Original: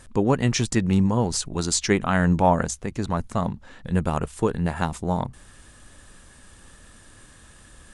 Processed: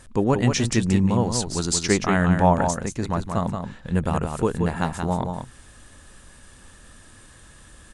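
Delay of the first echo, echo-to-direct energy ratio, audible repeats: 178 ms, -6.0 dB, 1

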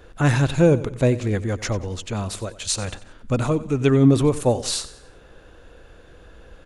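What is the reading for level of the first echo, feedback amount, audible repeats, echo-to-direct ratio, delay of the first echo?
-16.5 dB, 41%, 3, -15.5 dB, 92 ms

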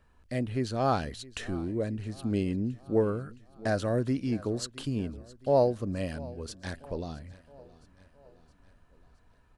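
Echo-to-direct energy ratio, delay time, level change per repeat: -19.0 dB, 667 ms, -5.5 dB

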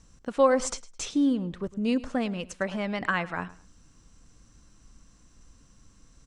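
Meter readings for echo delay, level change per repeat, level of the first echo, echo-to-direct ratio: 106 ms, -12.5 dB, -18.5 dB, -18.0 dB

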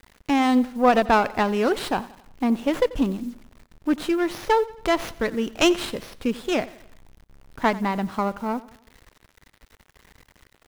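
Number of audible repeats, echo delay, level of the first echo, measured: 3, 89 ms, -19.0 dB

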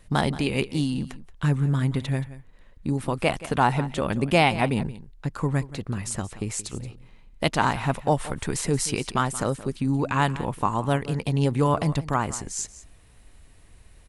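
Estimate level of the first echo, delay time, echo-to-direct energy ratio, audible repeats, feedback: -16.5 dB, 177 ms, -16.5 dB, 1, no regular repeats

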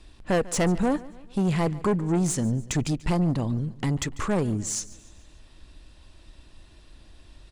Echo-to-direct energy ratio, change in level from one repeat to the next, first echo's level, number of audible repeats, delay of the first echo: -19.0 dB, -6.5 dB, -20.0 dB, 3, 145 ms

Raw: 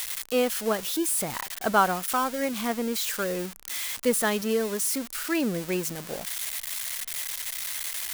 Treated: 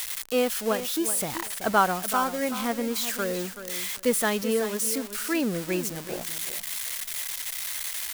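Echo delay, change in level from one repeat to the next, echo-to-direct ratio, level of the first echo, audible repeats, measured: 380 ms, -15.0 dB, -11.5 dB, -11.5 dB, 2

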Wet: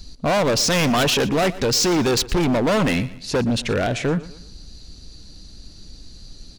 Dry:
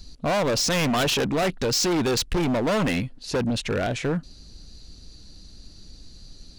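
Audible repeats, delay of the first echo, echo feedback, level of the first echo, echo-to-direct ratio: 3, 119 ms, 40%, -18.0 dB, -17.5 dB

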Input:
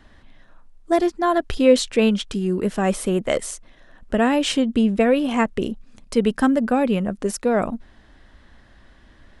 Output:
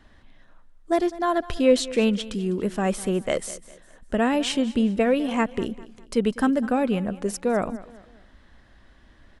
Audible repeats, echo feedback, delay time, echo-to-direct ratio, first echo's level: 3, 39%, 202 ms, -17.5 dB, -18.0 dB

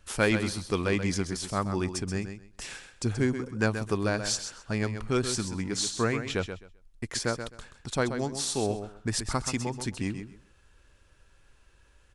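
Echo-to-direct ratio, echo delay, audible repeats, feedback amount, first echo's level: -9.0 dB, 130 ms, 2, 19%, -9.0 dB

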